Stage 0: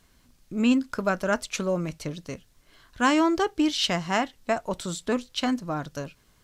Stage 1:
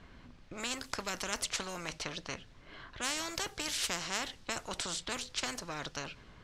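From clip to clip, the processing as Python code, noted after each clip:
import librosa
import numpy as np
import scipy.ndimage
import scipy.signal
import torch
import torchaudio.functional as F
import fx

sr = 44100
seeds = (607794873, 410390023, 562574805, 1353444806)

y = fx.env_lowpass(x, sr, base_hz=2700.0, full_db=-20.5)
y = fx.spectral_comp(y, sr, ratio=4.0)
y = F.gain(torch.from_numpy(y), -6.5).numpy()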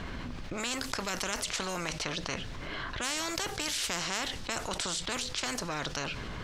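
y = fx.env_flatten(x, sr, amount_pct=70)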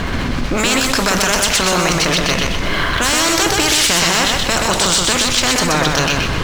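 y = fx.leveller(x, sr, passes=3)
y = fx.echo_feedback(y, sr, ms=126, feedback_pct=39, wet_db=-3)
y = F.gain(torch.from_numpy(y), 7.5).numpy()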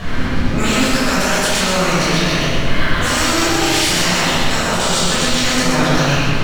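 y = fx.room_shoebox(x, sr, seeds[0], volume_m3=920.0, walls='mixed', distance_m=6.1)
y = F.gain(torch.from_numpy(y), -12.5).numpy()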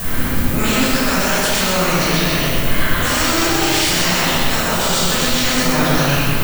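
y = fx.dmg_noise_colour(x, sr, seeds[1], colour='violet', level_db=-26.0)
y = F.gain(torch.from_numpy(y), -1.0).numpy()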